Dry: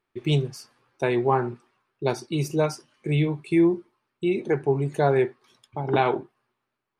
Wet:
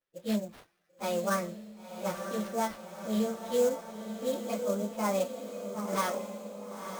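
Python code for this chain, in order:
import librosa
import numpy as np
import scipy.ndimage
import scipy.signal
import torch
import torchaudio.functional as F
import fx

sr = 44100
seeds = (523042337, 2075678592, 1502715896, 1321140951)

y = fx.pitch_bins(x, sr, semitones=6.5)
y = fx.sample_hold(y, sr, seeds[0], rate_hz=7400.0, jitter_pct=20)
y = fx.echo_diffused(y, sr, ms=997, feedback_pct=51, wet_db=-7.5)
y = y * librosa.db_to_amplitude(-7.0)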